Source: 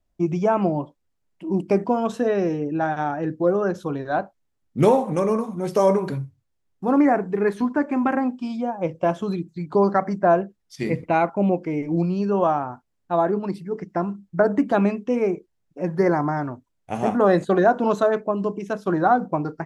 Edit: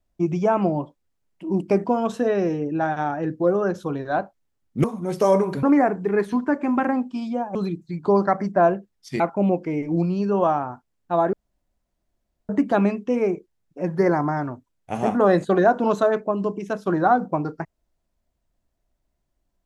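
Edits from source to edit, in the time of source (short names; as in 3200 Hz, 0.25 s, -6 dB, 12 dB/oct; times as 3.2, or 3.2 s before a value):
4.84–5.39 cut
6.18–6.91 cut
8.83–9.22 cut
10.87–11.2 cut
13.33–14.49 room tone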